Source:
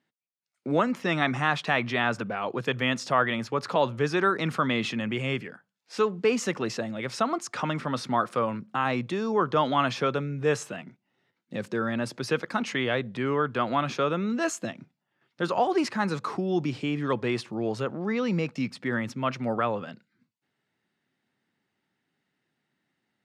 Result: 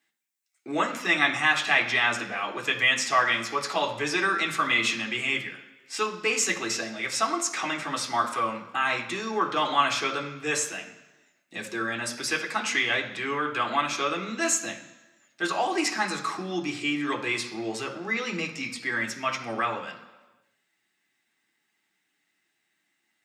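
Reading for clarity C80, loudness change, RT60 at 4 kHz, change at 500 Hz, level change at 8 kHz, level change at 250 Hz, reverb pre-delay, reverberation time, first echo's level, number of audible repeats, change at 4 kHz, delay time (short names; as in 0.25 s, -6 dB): 12.5 dB, +1.5 dB, 1.1 s, -5.0 dB, +11.0 dB, -5.0 dB, 3 ms, 1.2 s, none, none, +6.0 dB, none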